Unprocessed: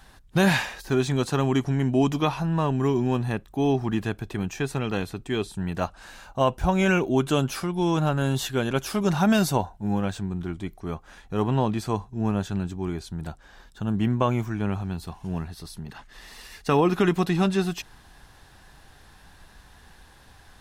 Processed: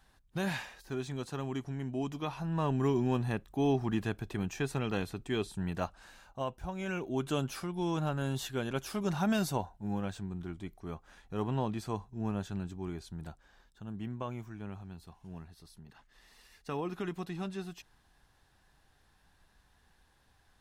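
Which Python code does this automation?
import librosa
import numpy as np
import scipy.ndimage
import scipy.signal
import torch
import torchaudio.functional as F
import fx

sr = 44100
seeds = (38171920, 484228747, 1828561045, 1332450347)

y = fx.gain(x, sr, db=fx.line((2.19, -14.0), (2.71, -6.0), (5.69, -6.0), (6.75, -17.5), (7.29, -9.5), (13.22, -9.5), (13.82, -16.0)))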